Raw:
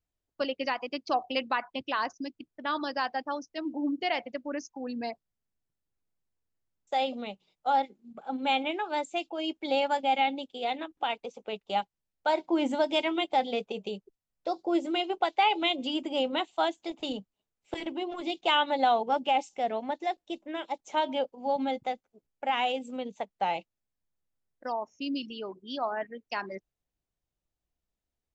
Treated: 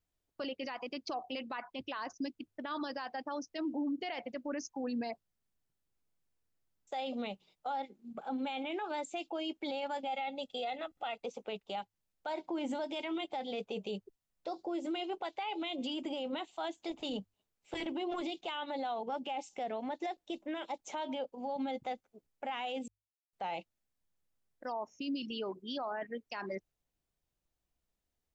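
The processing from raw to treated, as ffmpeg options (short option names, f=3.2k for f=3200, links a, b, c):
-filter_complex "[0:a]asettb=1/sr,asplit=3[a][b][c];[a]atrim=end=10.074[d];[b]atrim=start=10.07:end=11.22,asetpts=PTS-STARTPTS,afade=t=in:d=0.004:c=qsin,afade=t=out:st=1.146:d=0.004:c=qsin,aecho=1:1:1.5:0.65,atrim=end_sample=50715[e];[c]atrim=start=11.216[f];[d][e]acrossfade=d=0.004:c1=hsin:c2=qsin[g];[g][f]acrossfade=d=0.004:c1=qsin:c2=hsin,asplit=3[h][i][j];[h]atrim=end=22.88,asetpts=PTS-STARTPTS,afade=t=out:st=22.876:d=0.004:c=hsin[k];[i]atrim=start=22.88:end=23.33,asetpts=PTS-STARTPTS,volume=0[l];[j]atrim=start=23.33,asetpts=PTS-STARTPTS,afade=t=in:d=0.004:c=hsin[m];[k][l][m]concat=n=3:v=0:a=1,bandreject=f=50:t=h:w=6,bandreject=f=100:t=h:w=6,acompressor=threshold=-31dB:ratio=5,alimiter=level_in=7.5dB:limit=-24dB:level=0:latency=1:release=14,volume=-7.5dB,volume=1.5dB"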